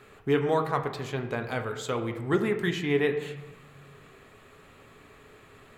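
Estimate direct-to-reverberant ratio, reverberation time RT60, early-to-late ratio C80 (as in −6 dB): 4.5 dB, 1.0 s, 11.0 dB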